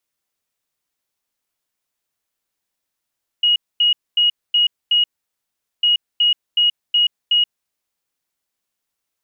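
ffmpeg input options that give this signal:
-f lavfi -i "aevalsrc='0.266*sin(2*PI*2890*t)*clip(min(mod(mod(t,2.4),0.37),0.13-mod(mod(t,2.4),0.37))/0.005,0,1)*lt(mod(t,2.4),1.85)':d=4.8:s=44100"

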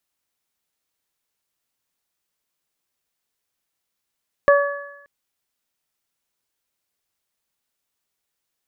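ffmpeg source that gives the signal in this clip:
-f lavfi -i "aevalsrc='0.355*pow(10,-3*t/0.78)*sin(2*PI*569*t)+0.168*pow(10,-3*t/0.86)*sin(2*PI*1138*t)+0.141*pow(10,-3*t/1.06)*sin(2*PI*1707*t)':d=0.58:s=44100"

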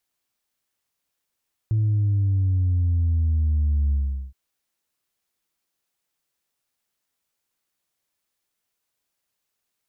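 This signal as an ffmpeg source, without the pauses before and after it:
-f lavfi -i "aevalsrc='0.126*clip((2.62-t)/0.41,0,1)*tanh(1.06*sin(2*PI*110*2.62/log(65/110)*(exp(log(65/110)*t/2.62)-1)))/tanh(1.06)':d=2.62:s=44100"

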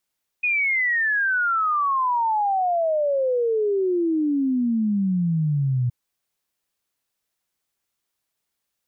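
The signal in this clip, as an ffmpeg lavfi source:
-f lavfi -i "aevalsrc='0.119*clip(min(t,5.47-t)/0.01,0,1)*sin(2*PI*2500*5.47/log(120/2500)*(exp(log(120/2500)*t/5.47)-1))':d=5.47:s=44100"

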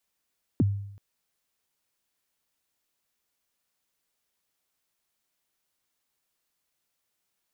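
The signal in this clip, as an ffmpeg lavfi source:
-f lavfi -i "aevalsrc='0.15*pow(10,-3*t/0.75)*sin(2*PI*(350*0.028/log(100/350)*(exp(log(100/350)*min(t,0.028)/0.028)-1)+100*max(t-0.028,0)))':d=0.38:s=44100"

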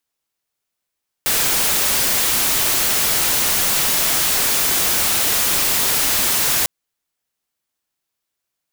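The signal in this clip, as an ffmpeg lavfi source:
-f lavfi -i "anoisesrc=c=white:a=0.231:d=5.4:r=44100:seed=1"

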